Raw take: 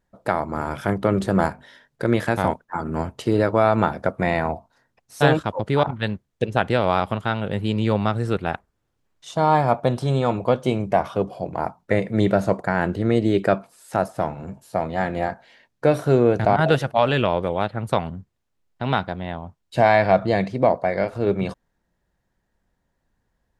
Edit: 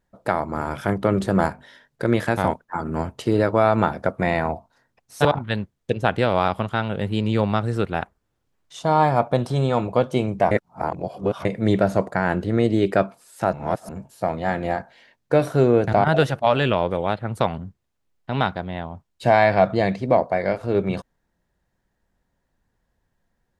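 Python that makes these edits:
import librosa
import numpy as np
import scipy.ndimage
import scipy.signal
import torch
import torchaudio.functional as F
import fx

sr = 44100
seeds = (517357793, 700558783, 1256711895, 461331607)

y = fx.edit(x, sr, fx.cut(start_s=5.25, length_s=0.52),
    fx.reverse_span(start_s=11.03, length_s=0.94),
    fx.reverse_span(start_s=14.05, length_s=0.36), tone=tone)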